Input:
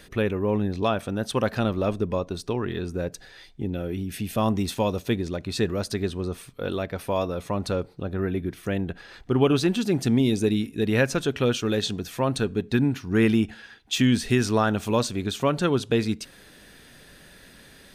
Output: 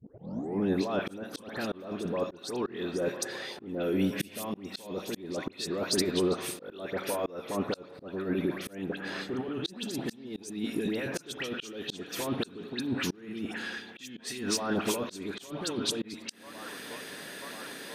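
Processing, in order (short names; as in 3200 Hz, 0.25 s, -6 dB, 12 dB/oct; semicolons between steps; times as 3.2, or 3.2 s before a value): tape start at the beginning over 0.60 s; Chebyshev high-pass 280 Hz, order 2; on a send: band-limited delay 0.983 s, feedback 61%, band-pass 1300 Hz, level -24 dB; on the sum: negative-ratio compressor -32 dBFS, ratio -1; dispersion highs, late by 86 ms, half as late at 1900 Hz; in parallel at -6 dB: soft clip -22.5 dBFS, distortion -19 dB; on the sum: spring tank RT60 2.7 s, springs 31/53 ms, chirp 80 ms, DRR 11.5 dB; auto swell 0.452 s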